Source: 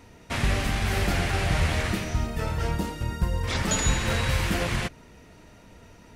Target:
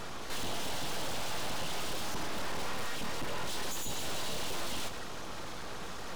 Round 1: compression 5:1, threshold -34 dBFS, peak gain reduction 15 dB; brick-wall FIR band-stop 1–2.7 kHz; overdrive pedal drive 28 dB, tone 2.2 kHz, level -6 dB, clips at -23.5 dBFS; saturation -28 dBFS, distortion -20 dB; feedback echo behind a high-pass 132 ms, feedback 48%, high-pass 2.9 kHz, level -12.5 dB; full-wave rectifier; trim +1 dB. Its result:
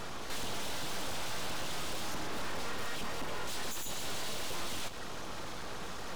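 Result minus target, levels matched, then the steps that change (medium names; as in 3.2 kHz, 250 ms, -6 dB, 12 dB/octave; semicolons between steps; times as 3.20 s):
compression: peak gain reduction +8 dB
change: compression 5:1, threshold -24 dBFS, peak gain reduction 7 dB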